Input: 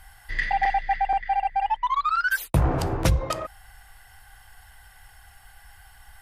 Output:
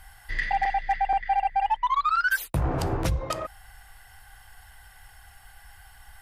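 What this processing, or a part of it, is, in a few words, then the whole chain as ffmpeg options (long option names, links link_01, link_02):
limiter into clipper: -af "alimiter=limit=-14.5dB:level=0:latency=1:release=365,asoftclip=type=hard:threshold=-16dB"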